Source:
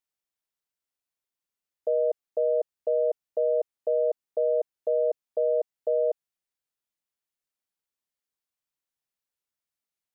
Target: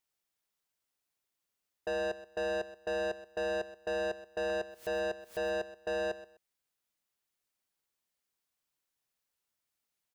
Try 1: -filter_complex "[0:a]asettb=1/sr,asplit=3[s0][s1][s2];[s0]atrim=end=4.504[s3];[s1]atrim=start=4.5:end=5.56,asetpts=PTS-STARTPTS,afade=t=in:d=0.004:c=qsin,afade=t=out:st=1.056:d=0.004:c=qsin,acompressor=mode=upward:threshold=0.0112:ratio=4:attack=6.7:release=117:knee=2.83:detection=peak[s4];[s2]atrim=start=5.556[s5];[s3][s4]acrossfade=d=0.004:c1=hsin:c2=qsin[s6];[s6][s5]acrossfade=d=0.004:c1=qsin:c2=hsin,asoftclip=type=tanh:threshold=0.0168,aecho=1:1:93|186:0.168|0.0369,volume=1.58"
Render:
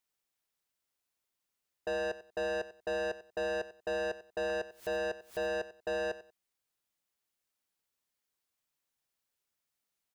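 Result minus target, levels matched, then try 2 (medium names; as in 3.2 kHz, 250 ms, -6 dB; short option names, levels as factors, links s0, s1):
echo 33 ms early
-filter_complex "[0:a]asettb=1/sr,asplit=3[s0][s1][s2];[s0]atrim=end=4.504[s3];[s1]atrim=start=4.5:end=5.56,asetpts=PTS-STARTPTS,afade=t=in:d=0.004:c=qsin,afade=t=out:st=1.056:d=0.004:c=qsin,acompressor=mode=upward:threshold=0.0112:ratio=4:attack=6.7:release=117:knee=2.83:detection=peak[s4];[s2]atrim=start=5.556[s5];[s3][s4]acrossfade=d=0.004:c1=hsin:c2=qsin[s6];[s6][s5]acrossfade=d=0.004:c1=qsin:c2=hsin,asoftclip=type=tanh:threshold=0.0168,aecho=1:1:126|252:0.168|0.0369,volume=1.58"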